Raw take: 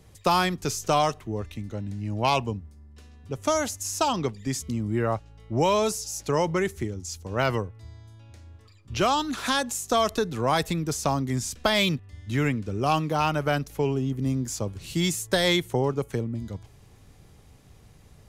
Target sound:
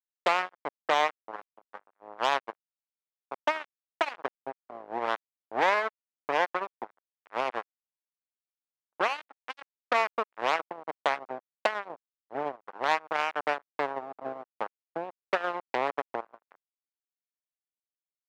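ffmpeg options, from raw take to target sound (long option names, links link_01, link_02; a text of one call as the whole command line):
ffmpeg -i in.wav -filter_complex "[0:a]asplit=2[link_01][link_02];[link_02]acompressor=threshold=-31dB:ratio=10,volume=1dB[link_03];[link_01][link_03]amix=inputs=2:normalize=0,lowpass=frequency=1000:width=0.5412,lowpass=frequency=1000:width=1.3066,acrusher=bits=2:mix=0:aa=0.5,highpass=680" out.wav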